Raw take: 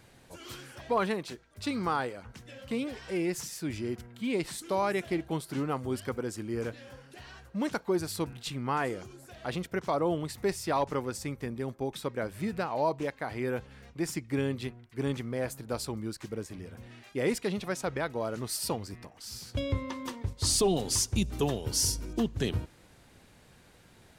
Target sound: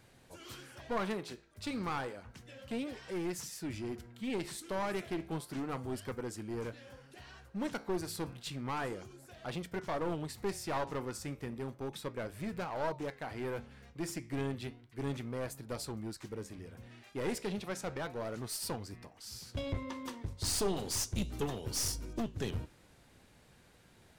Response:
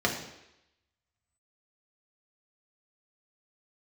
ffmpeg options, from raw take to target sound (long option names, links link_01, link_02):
-af "flanger=delay=7.6:depth=8.6:regen=-80:speed=0.32:shape=sinusoidal,aeval=exprs='clip(val(0),-1,0.0158)':channel_layout=same"